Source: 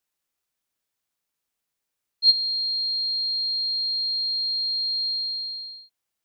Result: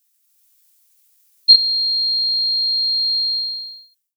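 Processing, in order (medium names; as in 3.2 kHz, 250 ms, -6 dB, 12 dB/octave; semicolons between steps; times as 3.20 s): fade out at the end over 1.47 s; differentiator; level rider gain up to 7 dB; tempo 1.5×; doubling 16 ms -3 dB; loudness maximiser +14.5 dB; trim -1 dB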